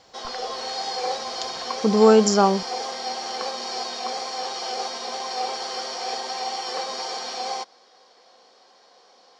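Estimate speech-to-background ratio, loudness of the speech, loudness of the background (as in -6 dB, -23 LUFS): 11.0 dB, -18.0 LUFS, -29.0 LUFS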